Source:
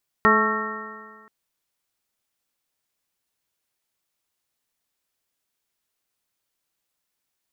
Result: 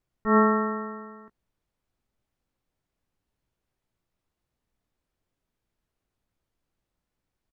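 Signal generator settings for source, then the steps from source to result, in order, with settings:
stretched partials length 1.03 s, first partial 214 Hz, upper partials 1/-7/-4/3/4/-16/3 dB, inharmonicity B 0.0026, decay 1.66 s, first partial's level -21 dB
tilt -4 dB/oct; auto swell 0.128 s; doubler 17 ms -11.5 dB

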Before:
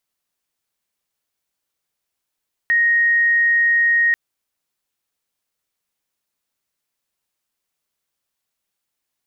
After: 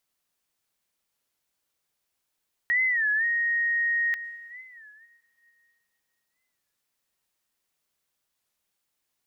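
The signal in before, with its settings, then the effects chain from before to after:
tone sine 1870 Hz -12.5 dBFS 1.44 s
limiter -20 dBFS; plate-style reverb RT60 3.4 s, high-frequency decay 0.7×, pre-delay 95 ms, DRR 16.5 dB; record warp 33 1/3 rpm, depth 160 cents

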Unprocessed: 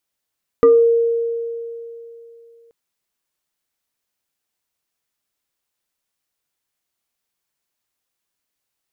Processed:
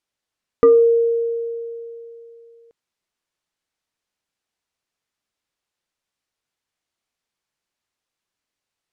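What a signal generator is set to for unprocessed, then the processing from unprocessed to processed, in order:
FM tone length 2.08 s, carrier 464 Hz, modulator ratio 1.59, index 0.59, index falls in 0.31 s exponential, decay 2.96 s, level -6 dB
air absorption 53 m

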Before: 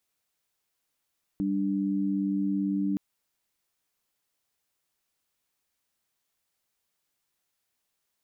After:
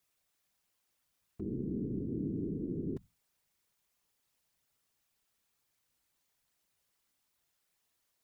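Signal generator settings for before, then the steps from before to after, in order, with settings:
chord G3/D4 sine, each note -27.5 dBFS 1.57 s
bell 88 Hz +13.5 dB 0.31 oct; limiter -31 dBFS; whisperiser

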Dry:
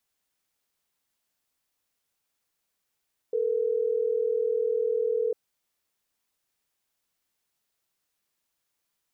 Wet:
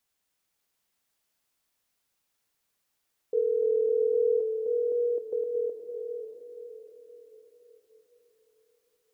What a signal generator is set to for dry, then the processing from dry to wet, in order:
call progress tone ringback tone, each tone -26 dBFS
reverse delay 0.259 s, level -8 dB; on a send: diffused feedback echo 0.636 s, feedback 43%, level -6 dB

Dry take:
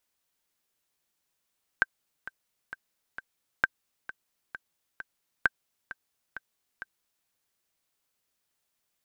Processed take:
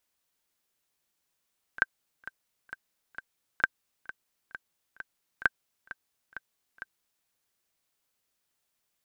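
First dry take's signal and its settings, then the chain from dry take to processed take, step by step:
metronome 132 bpm, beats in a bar 4, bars 3, 1560 Hz, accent 16.5 dB -8 dBFS
pre-echo 37 ms -19.5 dB

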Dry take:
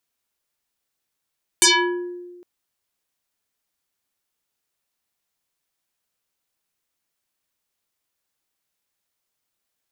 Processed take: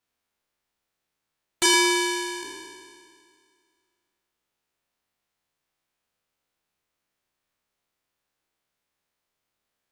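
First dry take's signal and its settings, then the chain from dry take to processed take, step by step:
FM tone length 0.81 s, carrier 354 Hz, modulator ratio 3.75, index 8, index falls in 0.69 s exponential, decay 1.44 s, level -9.5 dB
spectral trails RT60 2.10 s; high shelf 4400 Hz -10.5 dB; core saturation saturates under 1200 Hz

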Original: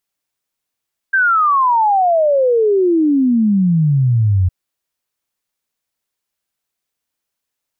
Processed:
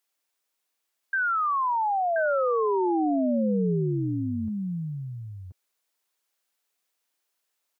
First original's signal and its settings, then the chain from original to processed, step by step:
log sweep 1600 Hz -> 88 Hz 3.36 s -10 dBFS
HPF 340 Hz 12 dB/oct; limiter -22 dBFS; echo 1.029 s -5 dB

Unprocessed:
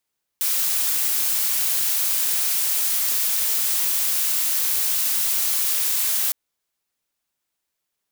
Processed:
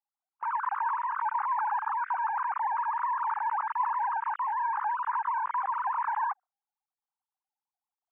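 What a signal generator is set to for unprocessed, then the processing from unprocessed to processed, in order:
noise blue, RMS -21.5 dBFS 5.91 s
sine-wave speech; gate with hold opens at -15 dBFS; steep low-pass 1200 Hz 36 dB/oct

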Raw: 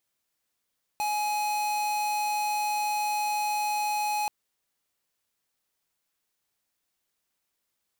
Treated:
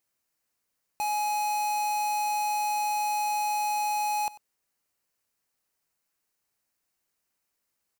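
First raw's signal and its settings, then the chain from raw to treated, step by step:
tone square 839 Hz -28 dBFS 3.28 s
bell 3500 Hz -4.5 dB 0.53 oct; notch 3400 Hz, Q 21; echo 94 ms -19 dB

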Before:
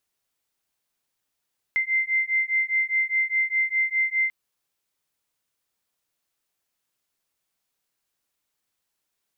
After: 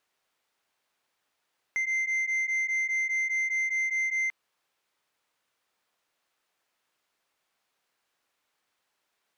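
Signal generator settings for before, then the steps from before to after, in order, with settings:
beating tones 2080 Hz, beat 4.9 Hz, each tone -24 dBFS 2.54 s
overdrive pedal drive 16 dB, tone 1700 Hz, clips at -17.5 dBFS; soft clip -24.5 dBFS

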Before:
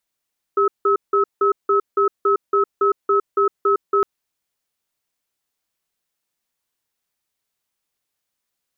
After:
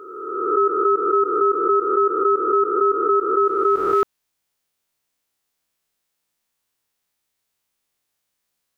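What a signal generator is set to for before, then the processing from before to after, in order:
cadence 400 Hz, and 1290 Hz, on 0.11 s, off 0.17 s, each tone -16 dBFS 3.46 s
spectral swells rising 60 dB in 1.52 s

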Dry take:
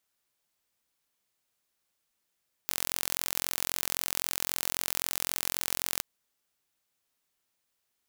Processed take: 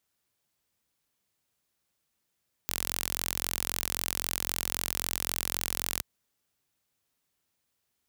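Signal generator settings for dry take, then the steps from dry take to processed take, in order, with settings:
pulse train 43.8/s, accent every 0, -3 dBFS 3.33 s
HPF 54 Hz; low shelf 230 Hz +9.5 dB

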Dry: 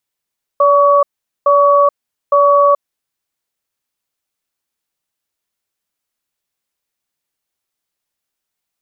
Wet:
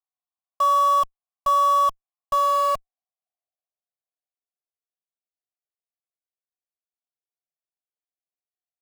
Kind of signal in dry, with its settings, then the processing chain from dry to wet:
cadence 573 Hz, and 1130 Hz, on 0.43 s, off 0.43 s, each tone -9.5 dBFS 2.16 s
vowel filter a; band-pass sweep 1000 Hz -> 380 Hz, 2.13–4.86; in parallel at -4 dB: Schmitt trigger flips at -42 dBFS

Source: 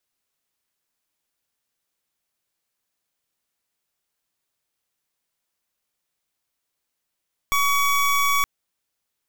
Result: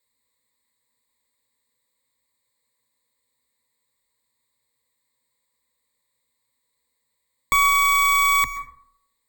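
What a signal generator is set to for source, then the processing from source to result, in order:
pulse 1130 Hz, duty 25% -19.5 dBFS 0.92 s
ripple EQ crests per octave 0.99, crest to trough 18 dB; plate-style reverb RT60 0.65 s, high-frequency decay 0.4×, pre-delay 0.115 s, DRR 12 dB

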